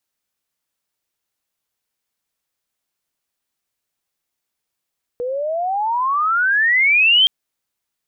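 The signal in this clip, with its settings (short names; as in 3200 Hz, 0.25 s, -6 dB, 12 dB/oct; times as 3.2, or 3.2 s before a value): gliding synth tone sine, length 2.07 s, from 478 Hz, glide +33 st, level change +11.5 dB, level -9 dB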